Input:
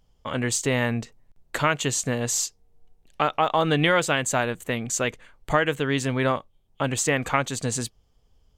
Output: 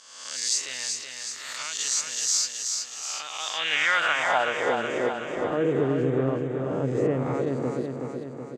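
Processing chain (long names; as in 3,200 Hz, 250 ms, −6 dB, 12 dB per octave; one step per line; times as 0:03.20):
peak hold with a rise ahead of every peak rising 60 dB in 0.99 s
0:05.57–0:07.34: parametric band 130 Hz +13 dB 1.2 octaves
brickwall limiter −9 dBFS, peak gain reduction 6.5 dB
band-pass filter sweep 5,100 Hz → 370 Hz, 0:03.29–0:04.86
on a send: repeating echo 374 ms, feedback 59%, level −5 dB
on the sum: level +3 dB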